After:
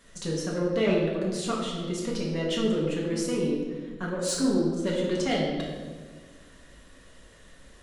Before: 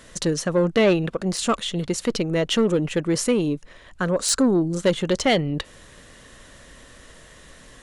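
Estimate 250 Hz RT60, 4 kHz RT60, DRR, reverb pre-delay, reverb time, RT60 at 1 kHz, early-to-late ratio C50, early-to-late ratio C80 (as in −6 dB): 2.0 s, 1.1 s, −4.5 dB, 4 ms, 1.6 s, 1.3 s, 1.5 dB, 3.5 dB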